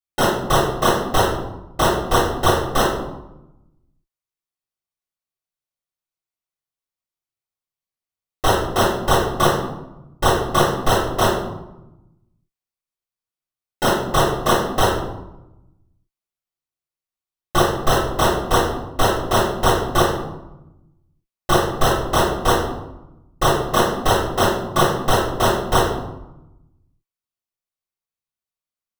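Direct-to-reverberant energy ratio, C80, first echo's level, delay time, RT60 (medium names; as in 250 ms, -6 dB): -7.0 dB, 7.0 dB, no echo, no echo, 0.95 s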